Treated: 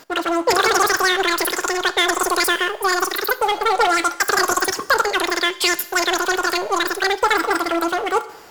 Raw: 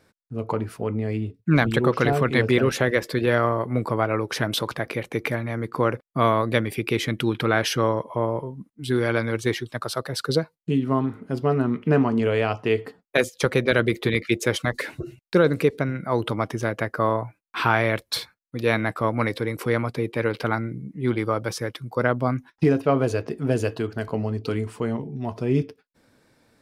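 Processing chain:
power curve on the samples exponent 0.7
four-comb reverb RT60 2.6 s, combs from 33 ms, DRR 13.5 dB
change of speed 3.13×

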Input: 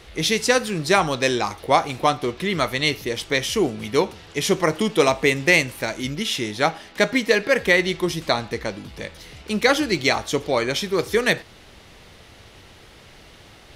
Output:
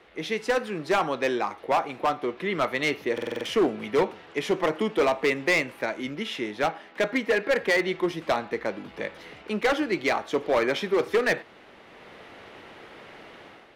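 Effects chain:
three-way crossover with the lows and the highs turned down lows −14 dB, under 190 Hz, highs −17 dB, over 2,700 Hz
automatic gain control gain up to 10 dB
low-shelf EQ 100 Hz −8.5 dB
hard clipping −12 dBFS, distortion −11 dB
buffer that repeats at 0:03.13, samples 2,048, times 6
level −5 dB

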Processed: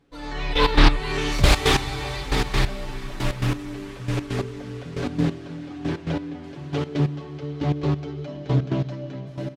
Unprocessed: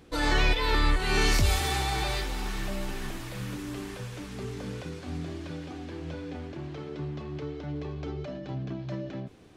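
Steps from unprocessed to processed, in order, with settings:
automatic gain control gain up to 10 dB
comb filter 7.1 ms, depth 62%
feedback delay with all-pass diffusion 452 ms, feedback 48%, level −8 dB
gate pattern ".....x.x" 136 BPM −12 dB
high-shelf EQ 5,700 Hz −8 dB, from 0:06.44 +3 dB
highs frequency-modulated by the lows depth 0.64 ms
level +1.5 dB

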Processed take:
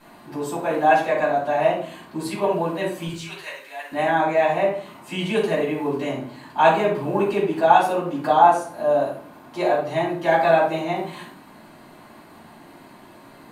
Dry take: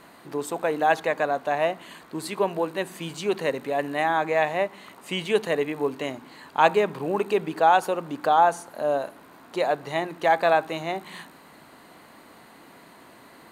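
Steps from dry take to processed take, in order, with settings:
0:03.07–0:03.92: high-pass filter 1,500 Hz 12 dB per octave
convolution reverb RT60 0.50 s, pre-delay 3 ms, DRR −8.5 dB
level −9 dB

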